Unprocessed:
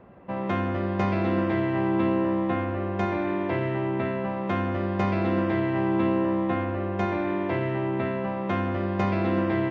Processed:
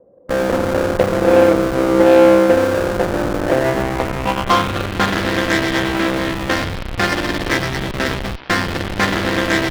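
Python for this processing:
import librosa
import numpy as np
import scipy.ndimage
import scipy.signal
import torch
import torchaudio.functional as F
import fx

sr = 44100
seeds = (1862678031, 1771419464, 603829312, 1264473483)

p1 = fx.peak_eq(x, sr, hz=1700.0, db=6.0, octaves=1.9)
p2 = fx.filter_sweep_lowpass(p1, sr, from_hz=530.0, to_hz=1800.0, start_s=3.39, end_s=5.23, q=6.1)
p3 = fx.cheby_harmonics(p2, sr, harmonics=(2, 6, 7), levels_db=(-29, -32, -15), full_scale_db=-5.5)
p4 = fx.small_body(p3, sr, hz=(300.0, 500.0, 3200.0), ring_ms=45, db=6)
p5 = fx.schmitt(p4, sr, flips_db=-30.0)
p6 = p4 + F.gain(torch.from_numpy(p5), -5.5).numpy()
p7 = fx.doppler_dist(p6, sr, depth_ms=0.17)
y = F.gain(torch.from_numpy(p7), 1.5).numpy()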